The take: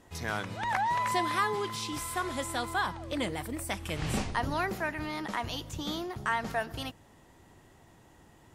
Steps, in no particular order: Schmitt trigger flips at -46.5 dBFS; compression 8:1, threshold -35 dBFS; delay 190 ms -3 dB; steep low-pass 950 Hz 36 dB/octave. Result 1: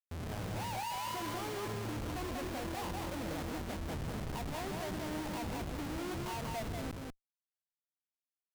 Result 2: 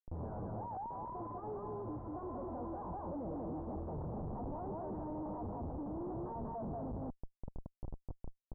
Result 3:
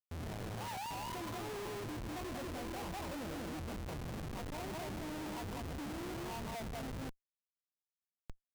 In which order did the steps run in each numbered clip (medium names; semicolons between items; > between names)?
steep low-pass > compression > Schmitt trigger > delay; delay > compression > Schmitt trigger > steep low-pass; delay > compression > steep low-pass > Schmitt trigger